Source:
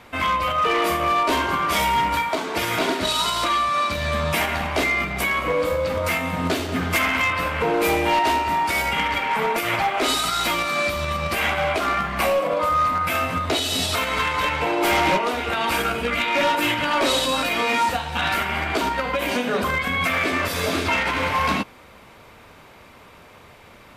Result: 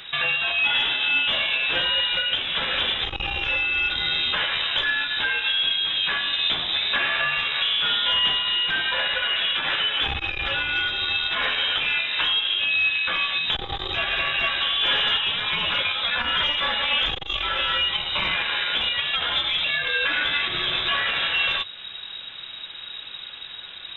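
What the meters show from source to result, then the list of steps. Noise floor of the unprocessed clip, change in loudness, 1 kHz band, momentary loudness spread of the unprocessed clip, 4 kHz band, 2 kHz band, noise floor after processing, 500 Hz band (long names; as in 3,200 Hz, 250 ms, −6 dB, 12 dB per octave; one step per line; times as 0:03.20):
−47 dBFS, 0.0 dB, −10.5 dB, 4 LU, +7.5 dB, +1.0 dB, −38 dBFS, −13.5 dB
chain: downward compressor 2 to 1, threshold −30 dBFS, peak gain reduction 7 dB
flanger 0.2 Hz, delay 2.6 ms, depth 5.4 ms, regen +85%
background noise brown −50 dBFS
voice inversion scrambler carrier 3,800 Hz
saturating transformer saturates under 270 Hz
level +9 dB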